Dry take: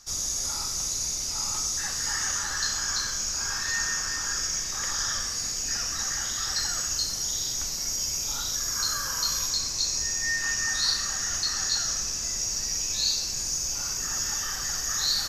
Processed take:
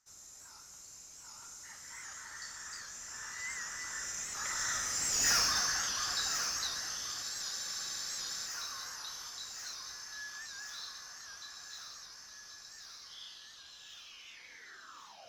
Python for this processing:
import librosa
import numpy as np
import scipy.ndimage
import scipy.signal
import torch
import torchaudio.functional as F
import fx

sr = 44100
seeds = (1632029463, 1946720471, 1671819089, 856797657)

p1 = fx.tape_stop_end(x, sr, length_s=2.6)
p2 = fx.doppler_pass(p1, sr, speed_mps=27, closest_m=3.5, pass_at_s=5.33)
p3 = fx.highpass(p2, sr, hz=85.0, slope=6)
p4 = fx.peak_eq(p3, sr, hz=1400.0, db=6.5, octaves=2.3)
p5 = fx.rider(p4, sr, range_db=4, speed_s=0.5)
p6 = p4 + (p5 * librosa.db_to_amplitude(-1.0))
p7 = 10.0 ** (-23.5 / 20.0) * np.tanh(p6 / 10.0 ** (-23.5 / 20.0))
p8 = p7 + fx.echo_thinned(p7, sr, ms=1080, feedback_pct=68, hz=200.0, wet_db=-9.5, dry=0)
p9 = fx.spec_freeze(p8, sr, seeds[0], at_s=7.25, hold_s=1.21)
y = fx.record_warp(p9, sr, rpm=78.0, depth_cents=100.0)